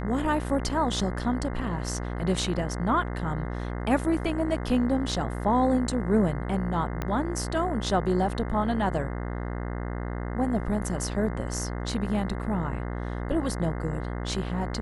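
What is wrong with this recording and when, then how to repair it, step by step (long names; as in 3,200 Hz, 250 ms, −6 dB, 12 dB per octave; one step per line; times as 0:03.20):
mains buzz 60 Hz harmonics 35 −32 dBFS
0:07.02: click −16 dBFS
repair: click removal
hum removal 60 Hz, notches 35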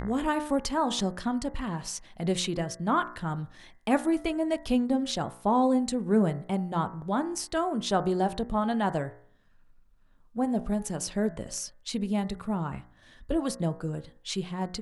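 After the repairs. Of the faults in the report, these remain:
0:07.02: click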